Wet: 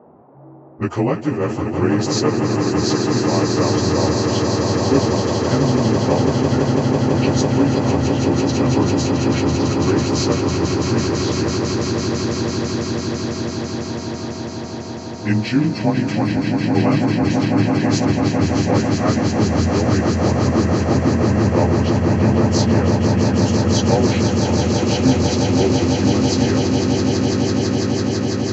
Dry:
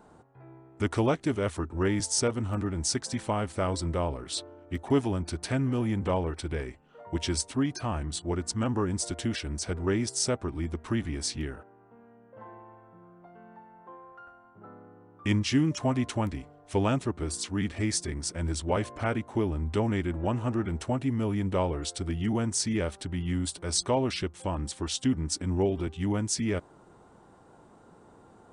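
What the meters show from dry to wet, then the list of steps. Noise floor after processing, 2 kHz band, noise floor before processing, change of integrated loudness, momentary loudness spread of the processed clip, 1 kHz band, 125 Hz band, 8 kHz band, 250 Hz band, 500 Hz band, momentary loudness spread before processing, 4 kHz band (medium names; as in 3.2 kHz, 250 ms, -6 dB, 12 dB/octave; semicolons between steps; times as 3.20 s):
-29 dBFS, +12.0 dB, -56 dBFS, +12.0 dB, 6 LU, +12.5 dB, +13.5 dB, +6.0 dB, +14.0 dB, +13.0 dB, 8 LU, +10.5 dB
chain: frequency axis rescaled in octaves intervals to 92%; high-pass 91 Hz; band-stop 3.6 kHz, Q 6.5; level-controlled noise filter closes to 520 Hz, open at -28 dBFS; treble shelf 7 kHz -8.5 dB; band noise 150–880 Hz -58 dBFS; echo with a slow build-up 166 ms, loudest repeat 8, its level -6.5 dB; trim +9 dB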